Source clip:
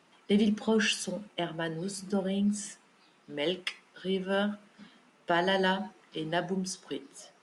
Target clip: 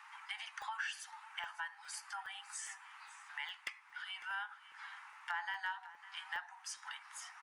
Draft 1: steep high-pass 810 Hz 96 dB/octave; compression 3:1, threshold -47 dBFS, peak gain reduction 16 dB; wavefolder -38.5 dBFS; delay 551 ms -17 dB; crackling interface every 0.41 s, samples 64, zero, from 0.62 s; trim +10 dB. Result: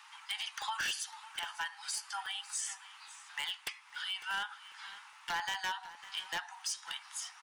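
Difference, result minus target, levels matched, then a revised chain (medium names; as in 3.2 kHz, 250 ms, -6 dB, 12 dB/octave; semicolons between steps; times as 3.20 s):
compression: peak gain reduction -6 dB; 4 kHz band +4.0 dB
steep high-pass 810 Hz 96 dB/octave; resonant high shelf 2.6 kHz -7.5 dB, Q 1.5; compression 3:1, threshold -55.5 dBFS, peak gain reduction 22 dB; wavefolder -38.5 dBFS; delay 551 ms -17 dB; crackling interface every 0.41 s, samples 64, zero, from 0.62 s; trim +10 dB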